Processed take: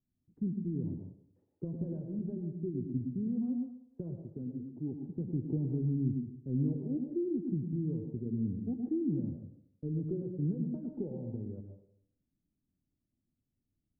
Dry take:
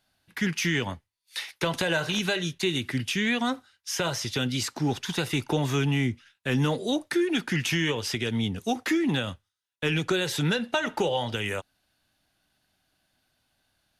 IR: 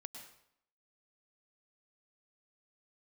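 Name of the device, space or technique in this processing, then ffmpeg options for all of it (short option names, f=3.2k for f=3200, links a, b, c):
next room: -filter_complex "[0:a]lowpass=f=340:w=0.5412,lowpass=f=340:w=1.3066[a];[1:a]atrim=start_sample=2205[b];[a][b]afir=irnorm=-1:irlink=0,asettb=1/sr,asplit=3[c][d][e];[c]atrim=end=4.224[f];[d]atrim=start=4.22:end=5.17,asetpts=PTS-STARTPTS,afade=t=in:d=0.004:c=qsin,afade=t=out:st=0.946:d=0.004:c=qsin,lowshelf=f=190:g=-9.5[g];[e]atrim=start=5.166[h];[f][g]acrossfade=d=0.004:c1=hsin:c2=qsin[i];[i][h]acrossfade=d=0.004:c1=qsin:c2=hsin"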